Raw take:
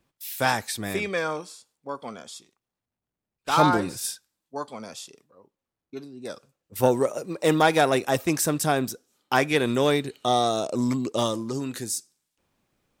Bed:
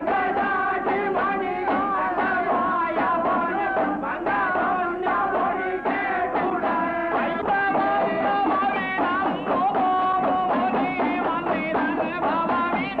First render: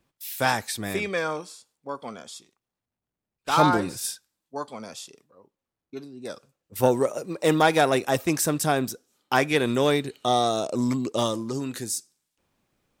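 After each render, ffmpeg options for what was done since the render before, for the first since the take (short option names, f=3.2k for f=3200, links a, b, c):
-af anull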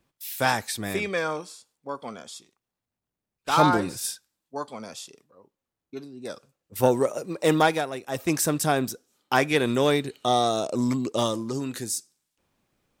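-filter_complex "[0:a]asplit=3[a][b][c];[a]atrim=end=7.86,asetpts=PTS-STARTPTS,afade=t=out:st=7.62:d=0.24:silence=0.266073[d];[b]atrim=start=7.86:end=8.07,asetpts=PTS-STARTPTS,volume=-11.5dB[e];[c]atrim=start=8.07,asetpts=PTS-STARTPTS,afade=t=in:d=0.24:silence=0.266073[f];[d][e][f]concat=n=3:v=0:a=1"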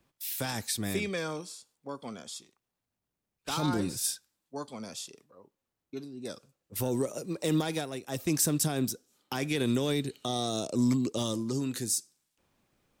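-filter_complex "[0:a]alimiter=limit=-14.5dB:level=0:latency=1:release=50,acrossover=split=360|3000[a][b][c];[b]acompressor=threshold=-55dB:ratio=1.5[d];[a][d][c]amix=inputs=3:normalize=0"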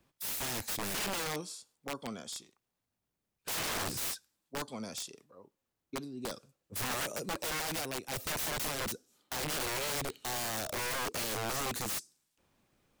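-af "aeval=exprs='(mod(31.6*val(0)+1,2)-1)/31.6':c=same"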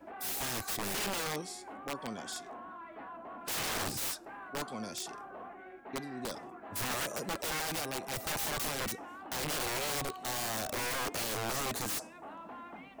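-filter_complex "[1:a]volume=-24.5dB[a];[0:a][a]amix=inputs=2:normalize=0"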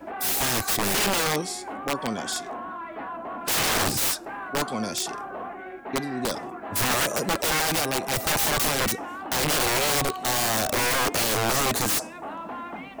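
-af "volume=11.5dB"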